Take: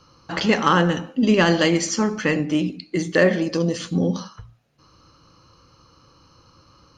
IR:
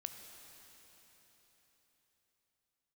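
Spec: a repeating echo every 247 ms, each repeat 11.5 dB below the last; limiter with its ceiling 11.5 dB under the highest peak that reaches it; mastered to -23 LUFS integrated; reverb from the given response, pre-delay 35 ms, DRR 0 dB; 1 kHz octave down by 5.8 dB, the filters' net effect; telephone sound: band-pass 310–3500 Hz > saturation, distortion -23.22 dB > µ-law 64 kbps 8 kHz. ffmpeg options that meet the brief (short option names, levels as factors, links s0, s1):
-filter_complex "[0:a]equalizer=f=1000:t=o:g=-7.5,alimiter=limit=0.133:level=0:latency=1,aecho=1:1:247|494|741:0.266|0.0718|0.0194,asplit=2[s0][s1];[1:a]atrim=start_sample=2205,adelay=35[s2];[s1][s2]afir=irnorm=-1:irlink=0,volume=1.41[s3];[s0][s3]amix=inputs=2:normalize=0,highpass=310,lowpass=3500,asoftclip=threshold=0.168,volume=1.78" -ar 8000 -c:a pcm_mulaw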